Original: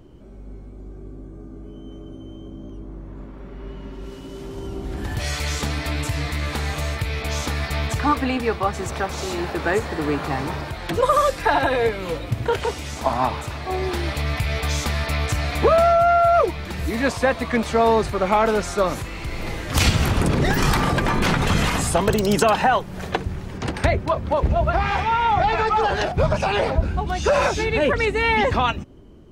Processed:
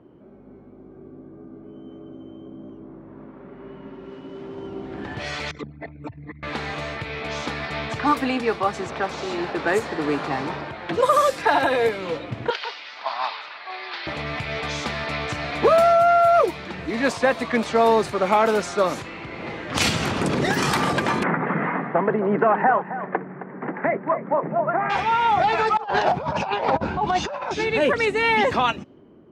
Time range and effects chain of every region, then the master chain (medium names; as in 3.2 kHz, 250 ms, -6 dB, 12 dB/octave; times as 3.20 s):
5.51–6.43 s: resonances exaggerated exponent 3 + high-pass 180 Hz 6 dB/octave
12.50–14.07 s: high-pass 1.1 kHz + resonant high shelf 6.1 kHz -10 dB, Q 3
21.23–24.90 s: Chebyshev band-pass 150–2000 Hz, order 4 + delay 266 ms -12.5 dB
25.77–27.51 s: low-pass 5.4 kHz + peaking EQ 920 Hz +11 dB 0.54 oct + compressor with a negative ratio -21 dBFS, ratio -0.5
whole clip: high-pass 180 Hz 12 dB/octave; level-controlled noise filter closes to 1.7 kHz, open at -16 dBFS